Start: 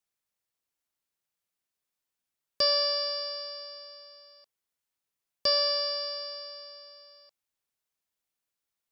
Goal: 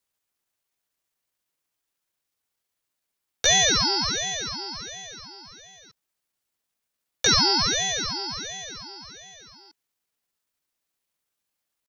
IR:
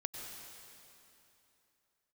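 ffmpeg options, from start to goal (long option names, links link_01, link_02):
-af "afreqshift=17,atempo=0.75,aeval=exprs='val(0)*sin(2*PI*780*n/s+780*0.75/1.4*sin(2*PI*1.4*n/s))':channel_layout=same,volume=8.5dB"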